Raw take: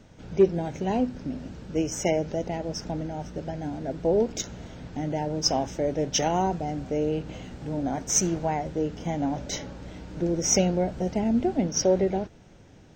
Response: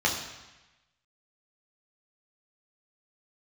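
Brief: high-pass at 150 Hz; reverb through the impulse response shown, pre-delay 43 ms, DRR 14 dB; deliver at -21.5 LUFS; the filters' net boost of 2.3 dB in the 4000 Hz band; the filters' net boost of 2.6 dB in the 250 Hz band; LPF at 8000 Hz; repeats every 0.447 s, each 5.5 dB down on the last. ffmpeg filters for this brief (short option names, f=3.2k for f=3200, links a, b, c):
-filter_complex "[0:a]highpass=150,lowpass=8k,equalizer=f=250:t=o:g=4.5,equalizer=f=4k:t=o:g=4.5,aecho=1:1:447|894|1341|1788|2235|2682|3129:0.531|0.281|0.149|0.079|0.0419|0.0222|0.0118,asplit=2[a][b];[1:a]atrim=start_sample=2205,adelay=43[c];[b][c]afir=irnorm=-1:irlink=0,volume=-26.5dB[d];[a][d]amix=inputs=2:normalize=0,volume=3dB"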